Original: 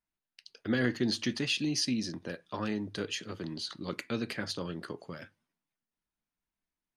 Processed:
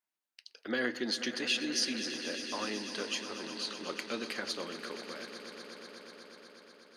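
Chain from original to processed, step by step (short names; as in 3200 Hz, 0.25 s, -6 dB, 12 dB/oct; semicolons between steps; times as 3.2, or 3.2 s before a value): HPF 400 Hz 12 dB/oct; swelling echo 0.122 s, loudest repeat 5, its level -14.5 dB; on a send at -21.5 dB: reverb RT60 0.20 s, pre-delay 3 ms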